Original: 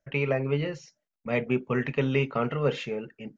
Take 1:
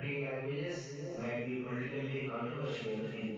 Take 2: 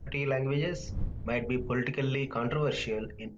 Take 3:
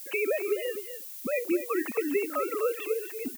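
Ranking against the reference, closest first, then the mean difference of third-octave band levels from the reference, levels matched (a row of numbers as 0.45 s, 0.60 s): 2, 1, 3; 3.5 dB, 7.0 dB, 17.0 dB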